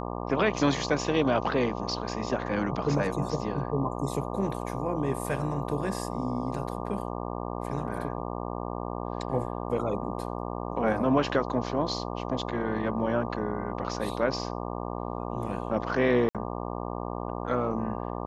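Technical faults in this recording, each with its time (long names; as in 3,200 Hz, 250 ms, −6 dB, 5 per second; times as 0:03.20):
mains buzz 60 Hz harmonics 20 −34 dBFS
0:16.29–0:16.35: drop-out 57 ms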